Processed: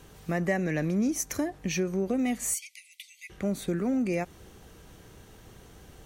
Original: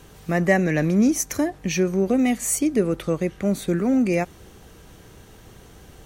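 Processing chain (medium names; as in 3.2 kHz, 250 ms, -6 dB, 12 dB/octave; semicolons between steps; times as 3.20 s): 2.54–3.30 s: Chebyshev high-pass 2 kHz, order 10; compression 2:1, threshold -22 dBFS, peak gain reduction 5.5 dB; trim -4.5 dB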